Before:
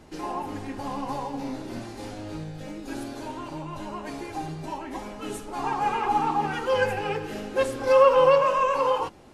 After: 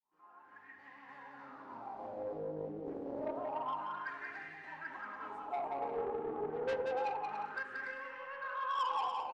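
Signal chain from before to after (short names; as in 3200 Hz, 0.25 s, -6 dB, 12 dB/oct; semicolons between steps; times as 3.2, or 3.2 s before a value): opening faded in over 2.44 s; tone controls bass +8 dB, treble -5 dB; compressor 16:1, threshold -27 dBFS, peak gain reduction 16 dB; wah 0.28 Hz 430–1900 Hz, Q 11; soft clip -40 dBFS, distortion -6 dB; bouncing-ball echo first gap 0.18 s, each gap 0.6×, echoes 5; on a send at -17 dB: reverb RT60 0.50 s, pre-delay 4 ms; on the sum: Doppler distortion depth 0.3 ms; gain +8 dB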